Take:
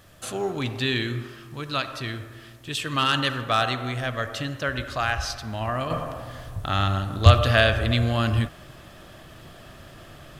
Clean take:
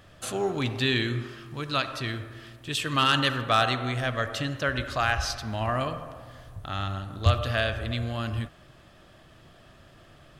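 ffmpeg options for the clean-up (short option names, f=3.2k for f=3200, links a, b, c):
-af "agate=range=-21dB:threshold=-38dB,asetnsamples=n=441:p=0,asendcmd='5.9 volume volume -8dB',volume=0dB"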